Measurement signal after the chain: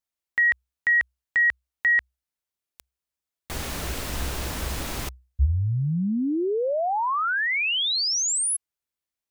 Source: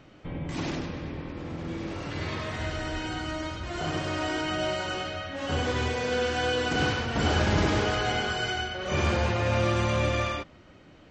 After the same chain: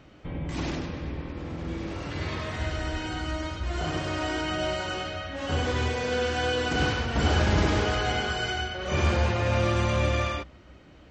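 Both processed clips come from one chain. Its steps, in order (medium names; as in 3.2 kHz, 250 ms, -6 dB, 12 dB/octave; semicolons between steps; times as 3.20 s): peaking EQ 63 Hz +13.5 dB 0.32 oct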